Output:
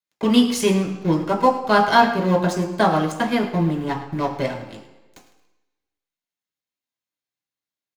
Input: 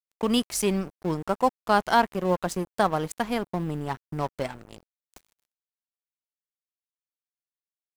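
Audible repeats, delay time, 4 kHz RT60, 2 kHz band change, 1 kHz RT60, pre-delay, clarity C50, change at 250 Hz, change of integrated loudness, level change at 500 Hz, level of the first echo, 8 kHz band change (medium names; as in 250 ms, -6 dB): 1, 107 ms, 1.0 s, +7.5 dB, 1.0 s, 3 ms, 8.0 dB, +8.5 dB, +7.0 dB, +6.0 dB, -14.5 dB, +1.5 dB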